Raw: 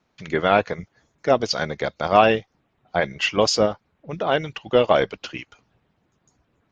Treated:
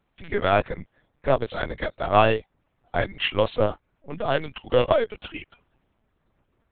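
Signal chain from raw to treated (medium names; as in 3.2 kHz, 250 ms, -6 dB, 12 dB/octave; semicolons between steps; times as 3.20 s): LPC vocoder at 8 kHz pitch kept; trim -2.5 dB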